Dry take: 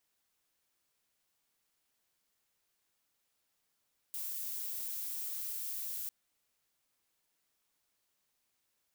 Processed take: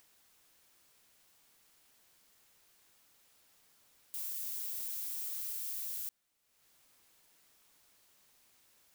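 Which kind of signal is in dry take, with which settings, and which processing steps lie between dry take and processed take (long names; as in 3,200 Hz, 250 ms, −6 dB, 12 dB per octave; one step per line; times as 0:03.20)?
noise violet, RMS −39.5 dBFS 1.95 s
upward compression, threshold −55 dBFS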